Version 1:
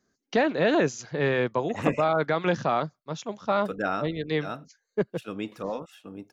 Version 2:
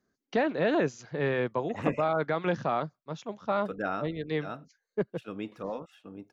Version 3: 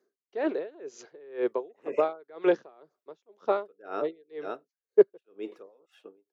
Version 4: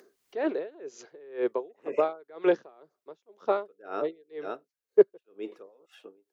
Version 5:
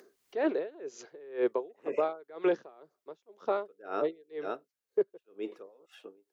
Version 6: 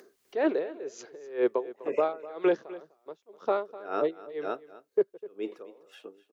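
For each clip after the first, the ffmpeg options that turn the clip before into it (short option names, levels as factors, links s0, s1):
-af "highshelf=f=5300:g=-11.5,volume=0.668"
-af "highpass=f=400:t=q:w=4.9,aeval=exprs='val(0)*pow(10,-32*(0.5-0.5*cos(2*PI*2*n/s))/20)':c=same"
-af "acompressor=mode=upward:threshold=0.00447:ratio=2.5"
-af "alimiter=limit=0.126:level=0:latency=1:release=111"
-af "aecho=1:1:251:0.133,volume=1.41"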